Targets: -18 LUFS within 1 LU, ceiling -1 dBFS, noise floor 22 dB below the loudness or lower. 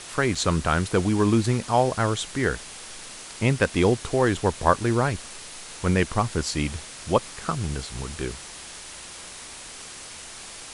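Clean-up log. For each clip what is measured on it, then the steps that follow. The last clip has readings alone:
dropouts 1; longest dropout 4.0 ms; noise floor -41 dBFS; noise floor target -47 dBFS; loudness -24.5 LUFS; peak level -3.0 dBFS; loudness target -18.0 LUFS
-> interpolate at 0.35 s, 4 ms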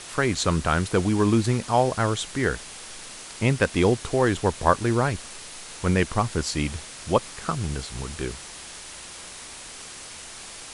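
dropouts 0; noise floor -41 dBFS; noise floor target -47 dBFS
-> noise print and reduce 6 dB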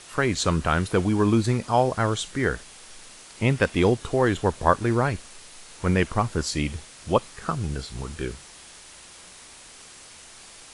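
noise floor -47 dBFS; loudness -24.5 LUFS; peak level -3.0 dBFS; loudness target -18.0 LUFS
-> trim +6.5 dB; peak limiter -1 dBFS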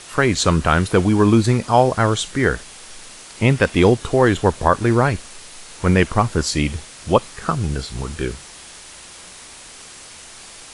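loudness -18.0 LUFS; peak level -1.0 dBFS; noise floor -40 dBFS

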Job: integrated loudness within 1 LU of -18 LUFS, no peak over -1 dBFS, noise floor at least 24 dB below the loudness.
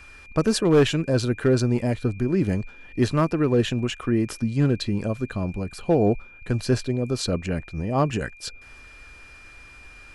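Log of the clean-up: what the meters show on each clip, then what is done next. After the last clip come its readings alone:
clipped samples 0.4%; clipping level -11.5 dBFS; steady tone 2.4 kHz; tone level -46 dBFS; loudness -24.0 LUFS; peak level -11.5 dBFS; loudness target -18.0 LUFS
-> clip repair -11.5 dBFS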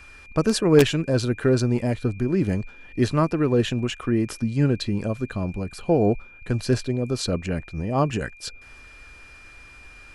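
clipped samples 0.0%; steady tone 2.4 kHz; tone level -46 dBFS
-> band-stop 2.4 kHz, Q 30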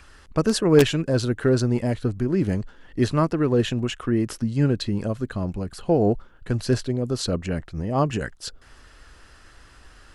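steady tone not found; loudness -23.5 LUFS; peak level -2.5 dBFS; loudness target -18.0 LUFS
-> trim +5.5 dB; peak limiter -1 dBFS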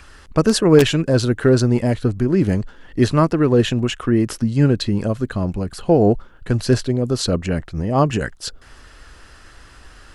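loudness -18.5 LUFS; peak level -1.0 dBFS; noise floor -45 dBFS

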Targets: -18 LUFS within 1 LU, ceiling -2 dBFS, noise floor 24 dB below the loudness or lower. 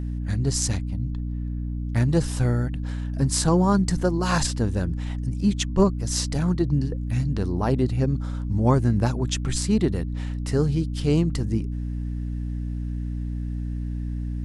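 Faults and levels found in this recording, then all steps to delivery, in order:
hum 60 Hz; highest harmonic 300 Hz; hum level -26 dBFS; loudness -25.0 LUFS; peak level -6.5 dBFS; loudness target -18.0 LUFS
-> hum notches 60/120/180/240/300 Hz; trim +7 dB; peak limiter -2 dBFS

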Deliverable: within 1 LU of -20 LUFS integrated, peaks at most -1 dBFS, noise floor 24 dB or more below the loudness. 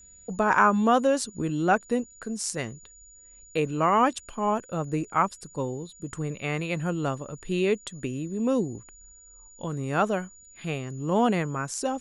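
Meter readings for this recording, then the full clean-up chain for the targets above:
steady tone 6.9 kHz; tone level -50 dBFS; loudness -27.0 LUFS; peak level -6.5 dBFS; loudness target -20.0 LUFS
-> band-stop 6.9 kHz, Q 30; trim +7 dB; peak limiter -1 dBFS

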